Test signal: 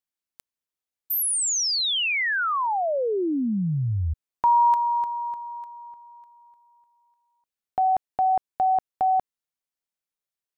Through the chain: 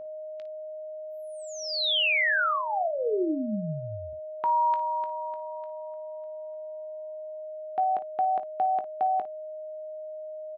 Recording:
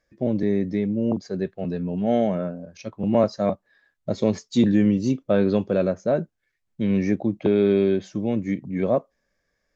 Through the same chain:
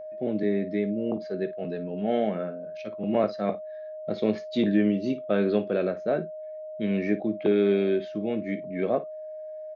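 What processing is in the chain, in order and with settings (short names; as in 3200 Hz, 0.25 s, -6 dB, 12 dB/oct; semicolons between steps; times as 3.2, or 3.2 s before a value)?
speaker cabinet 250–3900 Hz, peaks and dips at 260 Hz -4 dB, 560 Hz -6 dB, 960 Hz -8 dB; whine 620 Hz -37 dBFS; early reflections 19 ms -12.5 dB, 55 ms -15 dB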